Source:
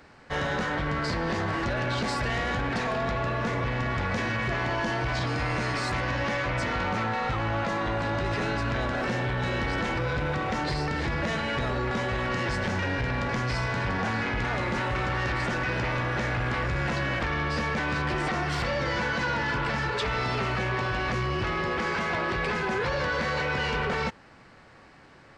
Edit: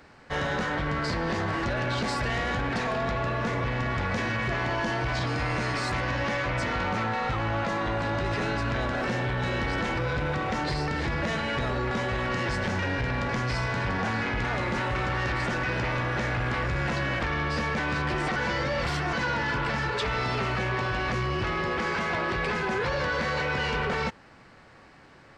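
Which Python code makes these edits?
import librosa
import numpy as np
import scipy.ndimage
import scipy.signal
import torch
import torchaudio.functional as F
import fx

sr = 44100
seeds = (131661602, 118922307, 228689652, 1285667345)

y = fx.edit(x, sr, fx.reverse_span(start_s=18.36, length_s=0.77), tone=tone)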